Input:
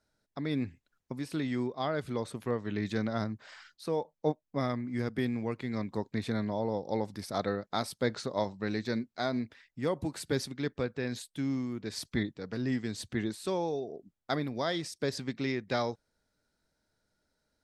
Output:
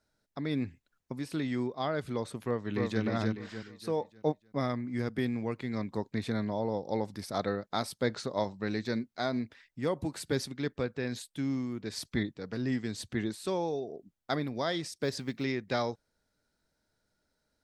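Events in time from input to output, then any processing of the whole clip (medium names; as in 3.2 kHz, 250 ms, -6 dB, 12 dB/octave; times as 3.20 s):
2.44–3.02 s: echo throw 300 ms, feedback 40%, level -2.5 dB
15.02–15.44 s: companded quantiser 8-bit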